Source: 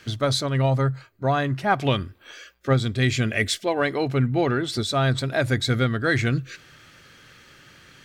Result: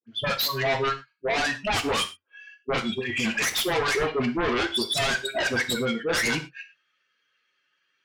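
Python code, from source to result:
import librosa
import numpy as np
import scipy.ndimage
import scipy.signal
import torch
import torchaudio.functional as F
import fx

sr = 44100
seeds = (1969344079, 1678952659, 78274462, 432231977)

y = fx.bin_expand(x, sr, power=1.5)
y = scipy.signal.sosfilt(scipy.signal.butter(2, 4300.0, 'lowpass', fs=sr, output='sos'), y)
y = fx.noise_reduce_blind(y, sr, reduce_db=19)
y = scipy.signal.sosfilt(scipy.signal.butter(2, 480.0, 'highpass', fs=sr, output='sos'), y)
y = fx.over_compress(y, sr, threshold_db=-41.0, ratio=-1.0, at=(2.89, 3.35))
y = fx.peak_eq(y, sr, hz=1400.0, db=-13.5, octaves=2.3, at=(5.58, 6.08))
y = 10.0 ** (-27.5 / 20.0) * np.tanh(y / 10.0 ** (-27.5 / 20.0))
y = fx.dispersion(y, sr, late='highs', ms=76.0, hz=1000.0)
y = fx.fold_sine(y, sr, drive_db=13, ceiling_db=-20.0)
y = fx.rev_gated(y, sr, seeds[0], gate_ms=140, shape='falling', drr_db=6.0)
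y = y * 10.0 ** (-2.0 / 20.0)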